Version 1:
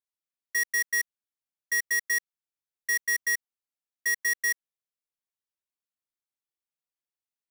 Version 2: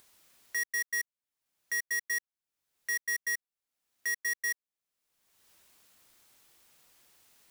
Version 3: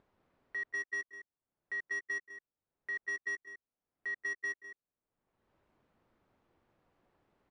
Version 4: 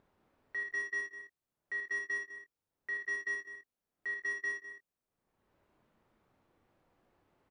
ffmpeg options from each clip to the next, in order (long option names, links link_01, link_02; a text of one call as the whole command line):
ffmpeg -i in.wav -af "acompressor=mode=upward:threshold=-31dB:ratio=2.5,volume=-5.5dB" out.wav
ffmpeg -i in.wav -af "aecho=1:1:180|203:0.188|0.398,adynamicsmooth=sensitivity=1:basefreq=990,volume=2.5dB" out.wav
ffmpeg -i in.wav -af "aecho=1:1:32|54|77:0.422|0.473|0.133" out.wav